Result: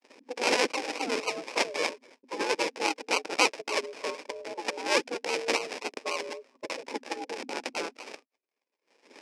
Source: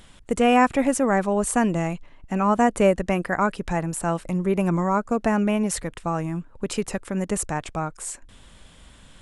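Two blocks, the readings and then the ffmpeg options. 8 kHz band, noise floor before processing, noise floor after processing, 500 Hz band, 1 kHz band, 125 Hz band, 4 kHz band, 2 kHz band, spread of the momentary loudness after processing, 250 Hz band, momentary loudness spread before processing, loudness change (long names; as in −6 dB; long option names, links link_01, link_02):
−5.5 dB, −50 dBFS, below −85 dBFS, −8.0 dB, −8.5 dB, below −30 dB, +6.5 dB, −0.5 dB, 13 LU, −17.0 dB, 12 LU, −7.0 dB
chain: -filter_complex "[0:a]afftfilt=real='re*pow(10,24/40*sin(2*PI*(0.81*log(max(b,1)*sr/1024/100)/log(2)-(-0.44)*(pts-256)/sr)))':imag='im*pow(10,24/40*sin(2*PI*(0.81*log(max(b,1)*sr/1024/100)/log(2)-(-0.44)*(pts-256)/sr)))':win_size=1024:overlap=0.75,acrossover=split=6100[link_01][link_02];[link_02]acompressor=threshold=-40dB:ratio=4:attack=1:release=60[link_03];[link_01][link_03]amix=inputs=2:normalize=0,agate=range=-52dB:threshold=-43dB:ratio=16:detection=peak,equalizer=frequency=2000:width_type=o:width=2.2:gain=12,acrossover=split=1000[link_04][link_05];[link_04]acompressor=threshold=-21dB:ratio=16[link_06];[link_05]acrusher=samples=35:mix=1:aa=0.000001:lfo=1:lforange=21:lforate=3.7[link_07];[link_06][link_07]amix=inputs=2:normalize=0,aeval=exprs='val(0)*sin(2*PI*250*n/s)':channel_layout=same,highpass=frequency=330:width=0.5412,highpass=frequency=330:width=1.3066,equalizer=frequency=370:width_type=q:width=4:gain=-4,equalizer=frequency=700:width_type=q:width=4:gain=-7,equalizer=frequency=1300:width_type=q:width=4:gain=-6,equalizer=frequency=2400:width_type=q:width=4:gain=10,equalizer=frequency=5200:width_type=q:width=4:gain=10,lowpass=frequency=9300:width=0.5412,lowpass=frequency=9300:width=1.3066,volume=-5.5dB"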